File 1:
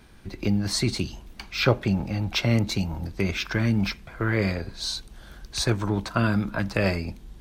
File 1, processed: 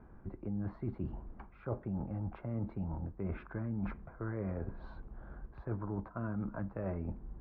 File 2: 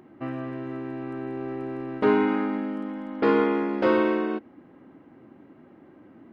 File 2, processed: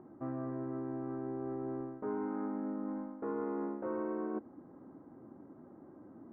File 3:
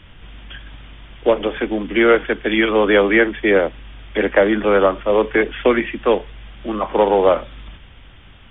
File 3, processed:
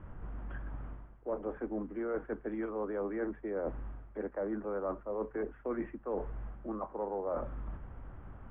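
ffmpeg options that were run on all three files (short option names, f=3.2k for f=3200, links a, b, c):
-af "lowpass=f=1.3k:w=0.5412,lowpass=f=1.3k:w=1.3066,areverse,acompressor=threshold=-32dB:ratio=6,areverse,volume=-3dB"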